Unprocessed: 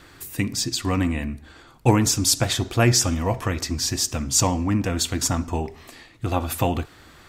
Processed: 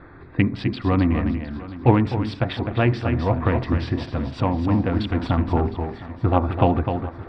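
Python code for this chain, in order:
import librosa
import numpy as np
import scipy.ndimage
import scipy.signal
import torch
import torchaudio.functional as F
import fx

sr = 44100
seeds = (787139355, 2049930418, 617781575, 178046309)

y = fx.wiener(x, sr, points=15)
y = y + 10.0 ** (-7.5 / 20.0) * np.pad(y, (int(255 * sr / 1000.0), 0))[:len(y)]
y = fx.rider(y, sr, range_db=4, speed_s=0.5)
y = scipy.signal.sosfilt(scipy.signal.cheby2(4, 40, 6200.0, 'lowpass', fs=sr, output='sos'), y)
y = fx.echo_swing(y, sr, ms=947, ratio=3, feedback_pct=43, wet_db=-16.5)
y = F.gain(torch.from_numpy(y), 2.0).numpy()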